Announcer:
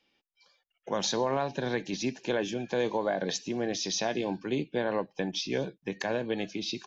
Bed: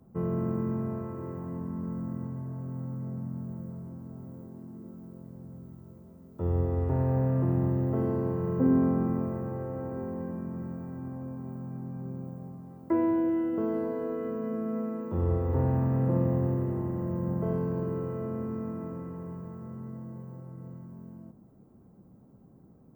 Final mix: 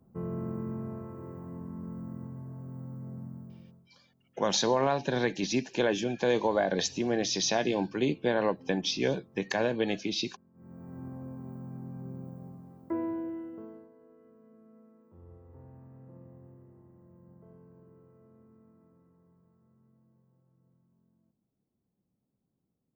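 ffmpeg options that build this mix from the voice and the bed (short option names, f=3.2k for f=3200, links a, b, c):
-filter_complex "[0:a]adelay=3500,volume=2.5dB[a];[1:a]volume=19dB,afade=t=out:st=3.23:d=0.66:silence=0.0749894,afade=t=in:st=10.54:d=0.47:silence=0.0595662,afade=t=out:st=12.51:d=1.38:silence=0.0794328[b];[a][b]amix=inputs=2:normalize=0"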